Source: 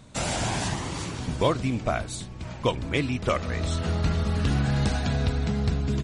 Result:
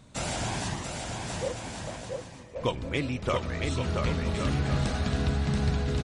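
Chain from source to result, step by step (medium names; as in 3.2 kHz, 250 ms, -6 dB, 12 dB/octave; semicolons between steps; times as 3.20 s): 0.83–2.56 s: cascade formant filter e; bouncing-ball echo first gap 680 ms, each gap 0.65×, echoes 5; on a send at -21.5 dB: reverberation RT60 0.80 s, pre-delay 5 ms; on the sum: trim -4 dB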